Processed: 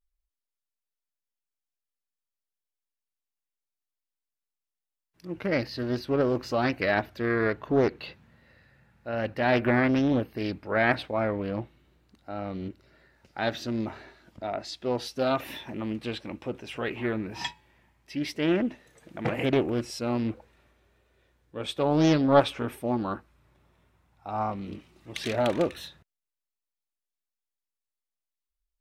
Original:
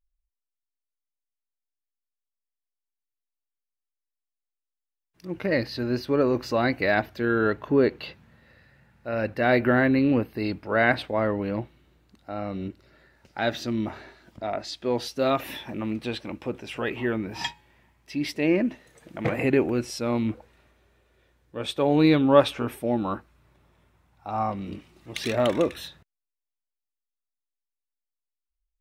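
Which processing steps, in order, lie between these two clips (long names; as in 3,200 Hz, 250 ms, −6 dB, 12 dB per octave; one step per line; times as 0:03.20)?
pitch vibrato 1.1 Hz 32 cents
highs frequency-modulated by the lows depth 0.43 ms
level −2.5 dB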